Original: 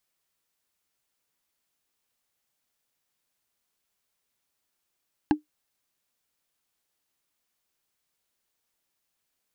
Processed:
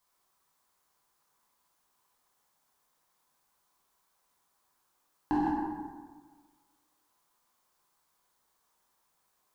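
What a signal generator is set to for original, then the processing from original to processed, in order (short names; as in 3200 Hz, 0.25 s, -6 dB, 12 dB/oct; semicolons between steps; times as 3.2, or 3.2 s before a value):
wood hit, lowest mode 302 Hz, decay 0.13 s, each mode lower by 5 dB, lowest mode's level -13 dB
plate-style reverb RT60 1.5 s, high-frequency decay 0.55×, DRR -3.5 dB; limiter -23 dBFS; fifteen-band EQ 100 Hz -4 dB, 1000 Hz +11 dB, 2500 Hz -5 dB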